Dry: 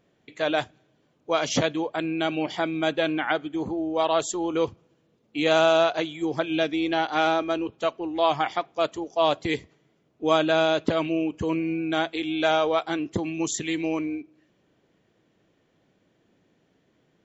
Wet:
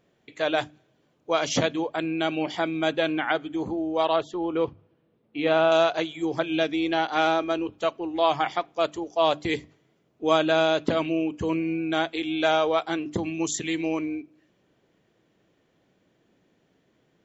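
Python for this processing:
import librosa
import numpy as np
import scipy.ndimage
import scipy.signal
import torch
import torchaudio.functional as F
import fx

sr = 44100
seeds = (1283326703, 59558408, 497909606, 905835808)

y = fx.air_absorb(x, sr, metres=280.0, at=(4.16, 5.72))
y = fx.hum_notches(y, sr, base_hz=50, count=6)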